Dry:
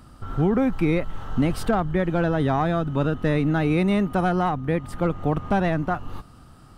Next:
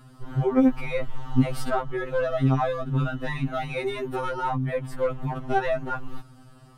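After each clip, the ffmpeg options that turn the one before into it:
-af "afftfilt=real='re*2.45*eq(mod(b,6),0)':imag='im*2.45*eq(mod(b,6),0)':win_size=2048:overlap=0.75"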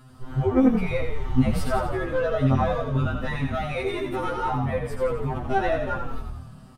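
-filter_complex "[0:a]asplit=8[a][b][c][d][e][f][g][h];[b]adelay=86,afreqshift=-39,volume=-6dB[i];[c]adelay=172,afreqshift=-78,volume=-10.9dB[j];[d]adelay=258,afreqshift=-117,volume=-15.8dB[k];[e]adelay=344,afreqshift=-156,volume=-20.6dB[l];[f]adelay=430,afreqshift=-195,volume=-25.5dB[m];[g]adelay=516,afreqshift=-234,volume=-30.4dB[n];[h]adelay=602,afreqshift=-273,volume=-35.3dB[o];[a][i][j][k][l][m][n][o]amix=inputs=8:normalize=0"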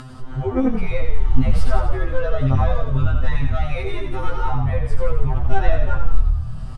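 -af "acompressor=mode=upward:threshold=-27dB:ratio=2.5,asubboost=boost=10.5:cutoff=76,lowpass=8.3k"

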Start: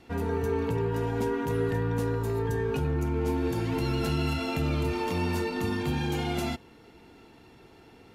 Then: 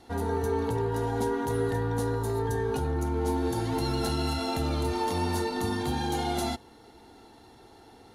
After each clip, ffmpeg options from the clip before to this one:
-af "equalizer=f=160:t=o:w=0.33:g=-9,equalizer=f=800:t=o:w=0.33:g=8,equalizer=f=2.5k:t=o:w=0.33:g=-10,equalizer=f=4k:t=o:w=0.33:g=6,equalizer=f=6.3k:t=o:w=0.33:g=4,equalizer=f=10k:t=o:w=0.33:g=10"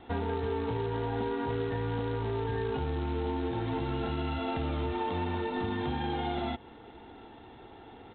-af "acompressor=threshold=-32dB:ratio=6,aresample=8000,acrusher=bits=4:mode=log:mix=0:aa=0.000001,aresample=44100,volume=3dB"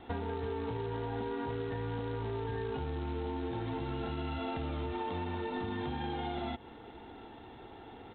-af "acompressor=threshold=-33dB:ratio=6"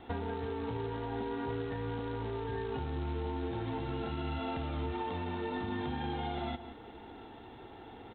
-filter_complex "[0:a]asplit=2[a][b];[b]adelay=174.9,volume=-12dB,highshelf=f=4k:g=-3.94[c];[a][c]amix=inputs=2:normalize=0"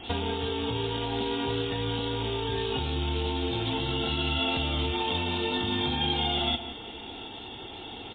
-af "aexciter=amount=8.5:drive=3.7:freq=2.7k,volume=6.5dB" -ar 8000 -c:a libmp3lame -b:a 16k

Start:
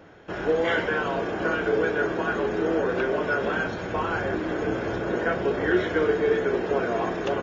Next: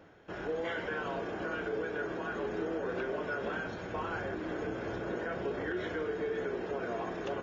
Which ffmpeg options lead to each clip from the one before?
-af "alimiter=limit=-17.5dB:level=0:latency=1:release=88,areverse,acompressor=mode=upward:threshold=-41dB:ratio=2.5,areverse,volume=-9dB"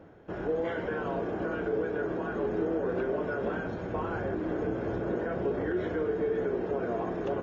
-af "tiltshelf=f=1.3k:g=7"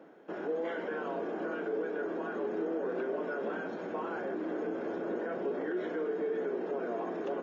-filter_complex "[0:a]highpass=f=220:w=0.5412,highpass=f=220:w=1.3066,asplit=2[a][b];[b]alimiter=level_in=6.5dB:limit=-24dB:level=0:latency=1,volume=-6.5dB,volume=-1dB[c];[a][c]amix=inputs=2:normalize=0,volume=-6.5dB"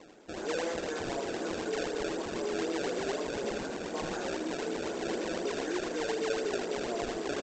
-af "aresample=16000,acrusher=samples=9:mix=1:aa=0.000001:lfo=1:lforange=14.4:lforate=4,aresample=44100,aecho=1:1:79:0.473"

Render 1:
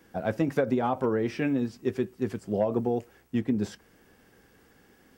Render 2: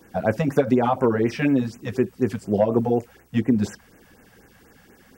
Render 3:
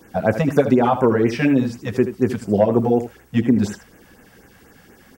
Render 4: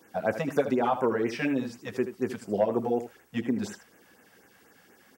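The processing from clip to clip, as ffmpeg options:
-af "afftfilt=real='re*(1-between(b*sr/1024,300*pow(4400/300,0.5+0.5*sin(2*PI*4.1*pts/sr))/1.41,300*pow(4400/300,0.5+0.5*sin(2*PI*4.1*pts/sr))*1.41))':imag='im*(1-between(b*sr/1024,300*pow(4400/300,0.5+0.5*sin(2*PI*4.1*pts/sr))/1.41,300*pow(4400/300,0.5+0.5*sin(2*PI*4.1*pts/sr))*1.41))':win_size=1024:overlap=0.75,volume=7.5dB"
-af "aecho=1:1:79:0.266,volume=3.5dB"
-af "highpass=f=370:p=1,volume=-7dB"

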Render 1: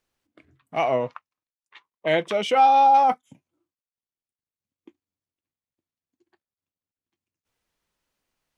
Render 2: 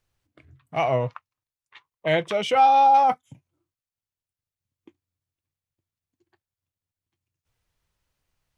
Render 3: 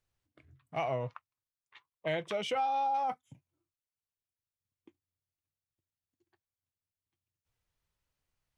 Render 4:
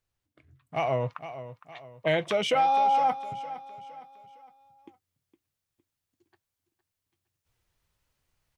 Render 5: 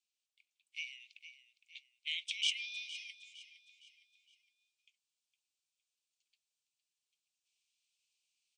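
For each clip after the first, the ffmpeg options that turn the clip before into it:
-af "lowshelf=f=160:t=q:w=1.5:g=9.5"
-af "acompressor=threshold=-21dB:ratio=6,volume=-8dB"
-af "aecho=1:1:461|922|1383|1844:0.188|0.0772|0.0317|0.013,dynaudnorm=f=140:g=11:m=8dB"
-af "asuperpass=centerf=4800:order=20:qfactor=0.71"

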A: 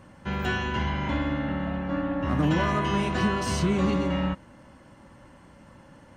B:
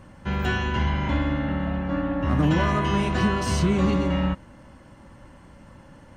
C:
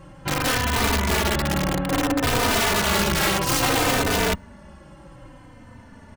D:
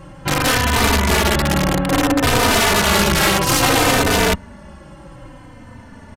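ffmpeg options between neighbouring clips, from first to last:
-af "lowshelf=f=72:g=9.5,volume=1.5dB"
-filter_complex "[0:a]aeval=exprs='(mod(8.41*val(0)+1,2)-1)/8.41':c=same,asplit=2[a][b];[b]adelay=3.2,afreqshift=-0.6[c];[a][c]amix=inputs=2:normalize=1,volume=6dB"
-af "aresample=32000,aresample=44100,volume=6dB"

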